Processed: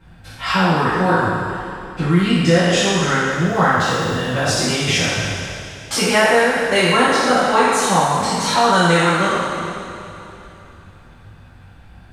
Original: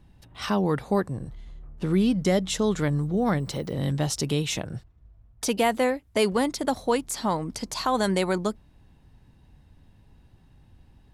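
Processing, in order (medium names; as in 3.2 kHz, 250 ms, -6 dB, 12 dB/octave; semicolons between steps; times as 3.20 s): spectral sustain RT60 1.30 s; peaking EQ 1.6 kHz +11.5 dB 1.7 oct; in parallel at +2 dB: compression, threshold -30 dBFS, peak gain reduction 18 dB; on the sum: speed mistake 48 kHz file played as 44.1 kHz; two-slope reverb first 0.32 s, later 3.3 s, from -17 dB, DRR -9 dB; trim -9 dB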